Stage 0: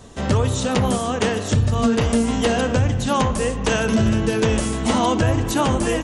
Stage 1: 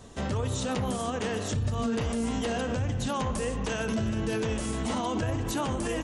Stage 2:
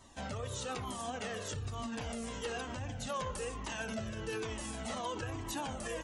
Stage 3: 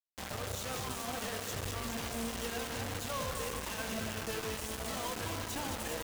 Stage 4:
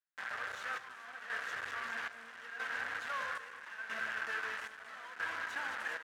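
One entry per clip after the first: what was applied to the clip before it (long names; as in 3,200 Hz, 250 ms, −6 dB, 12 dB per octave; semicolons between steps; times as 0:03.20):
brickwall limiter −16 dBFS, peak gain reduction 9 dB; level −5.5 dB
low-shelf EQ 310 Hz −8.5 dB; flanger whose copies keep moving one way falling 1.1 Hz; level −1.5 dB
delay that swaps between a low-pass and a high-pass 104 ms, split 870 Hz, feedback 80%, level −4.5 dB; bit-depth reduction 6 bits, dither none; level −2 dB
square-wave tremolo 0.77 Hz, depth 65%, duty 60%; resonant band-pass 1,600 Hz, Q 4.3; level +11 dB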